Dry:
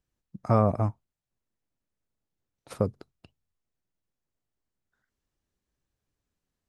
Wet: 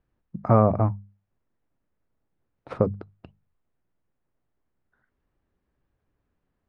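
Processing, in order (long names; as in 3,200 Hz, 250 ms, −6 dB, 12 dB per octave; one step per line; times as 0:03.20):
low-pass filter 1,800 Hz 12 dB per octave
mains-hum notches 50/100/150/200 Hz
in parallel at −1 dB: downward compressor, threshold −36 dBFS, peak gain reduction 18.5 dB
on the sum: level +3.5 dB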